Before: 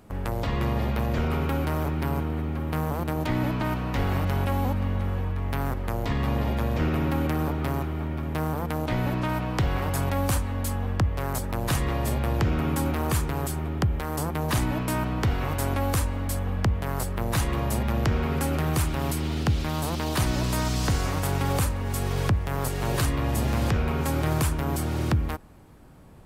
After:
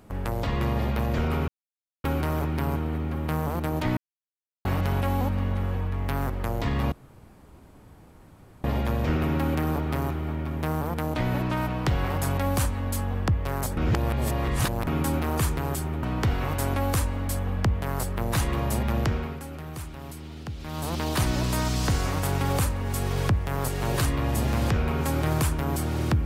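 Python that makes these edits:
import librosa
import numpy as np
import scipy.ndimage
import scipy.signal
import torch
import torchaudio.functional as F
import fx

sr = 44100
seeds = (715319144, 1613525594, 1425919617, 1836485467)

y = fx.edit(x, sr, fx.insert_silence(at_s=1.48, length_s=0.56),
    fx.silence(start_s=3.41, length_s=0.68),
    fx.insert_room_tone(at_s=6.36, length_s=1.72),
    fx.reverse_span(start_s=11.49, length_s=1.1),
    fx.cut(start_s=13.75, length_s=1.28),
    fx.fade_down_up(start_s=18.0, length_s=1.98, db=-12.0, fade_s=0.4), tone=tone)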